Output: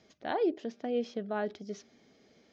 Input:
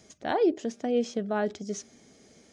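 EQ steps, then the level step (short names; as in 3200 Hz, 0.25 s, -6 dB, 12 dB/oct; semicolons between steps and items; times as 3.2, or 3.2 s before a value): LPF 4800 Hz 24 dB/oct; low shelf 140 Hz -7 dB; -4.5 dB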